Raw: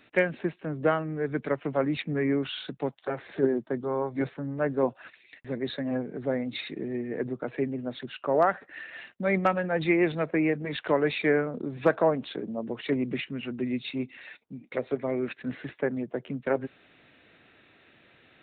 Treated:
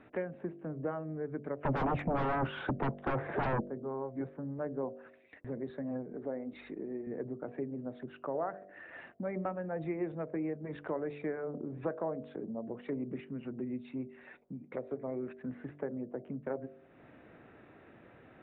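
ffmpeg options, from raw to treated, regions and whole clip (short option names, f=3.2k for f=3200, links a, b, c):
-filter_complex "[0:a]asettb=1/sr,asplit=3[a][b][c];[a]atrim=end=1.634[d];[b]atrim=start=1.63:end=3.61,asetpts=PTS-STARTPTS,afade=t=in:d=0.004:c=qsin,afade=t=out:st=1.976:d=0.004:c=qsin,lowpass=2.5k,aeval=exprs='0.237*sin(PI/2*8.91*val(0)/0.237)':c=same[e];[c]atrim=start=3.606[f];[d][e]acrossfade=d=0.004:c1=hsin:c2=qsin[g];[g][f]acrossfade=d=0.004:c1=qsin:c2=hsin,asettb=1/sr,asplit=3[h][i][j];[h]atrim=end=6.134[k];[i]atrim=start=6.13:end=7.07,asetpts=PTS-STARTPTS,afade=t=in:d=0.004:c=qsin,afade=t=out:st=0.936:d=0.004:c=qsin,highpass=220,aeval=exprs='val(0)+0.000631*(sin(2*PI*50*n/s)+sin(2*PI*2*50*n/s)/2+sin(2*PI*3*50*n/s)/3+sin(2*PI*4*50*n/s)/4+sin(2*PI*5*50*n/s)/5)':c=same[l];[j]atrim=start=7.066[m];[k][l]acrossfade=d=0.004:c1=hsin:c2=qsin[n];[n][m]acrossfade=d=0.004:c1=qsin:c2=hsin,lowpass=1.1k,bandreject=f=48.65:t=h:w=4,bandreject=f=97.3:t=h:w=4,bandreject=f=145.95:t=h:w=4,bandreject=f=194.6:t=h:w=4,bandreject=f=243.25:t=h:w=4,bandreject=f=291.9:t=h:w=4,bandreject=f=340.55:t=h:w=4,bandreject=f=389.2:t=h:w=4,bandreject=f=437.85:t=h:w=4,bandreject=f=486.5:t=h:w=4,bandreject=f=535.15:t=h:w=4,bandreject=f=583.8:t=h:w=4,bandreject=f=632.45:t=h:w=4,bandreject=f=681.1:t=h:w=4,bandreject=f=729.75:t=h:w=4,acompressor=threshold=-53dB:ratio=2,volume=6dB"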